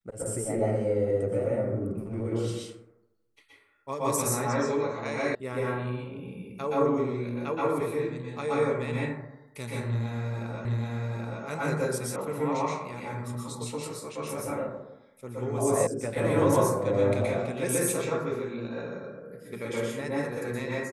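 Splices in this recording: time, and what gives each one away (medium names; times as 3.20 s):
5.35 s: sound stops dead
10.65 s: repeat of the last 0.78 s
12.16 s: sound stops dead
15.87 s: sound stops dead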